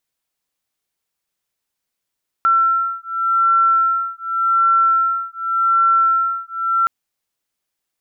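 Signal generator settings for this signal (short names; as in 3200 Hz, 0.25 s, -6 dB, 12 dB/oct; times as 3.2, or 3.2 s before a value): beating tones 1350 Hz, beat 0.87 Hz, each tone -16.5 dBFS 4.42 s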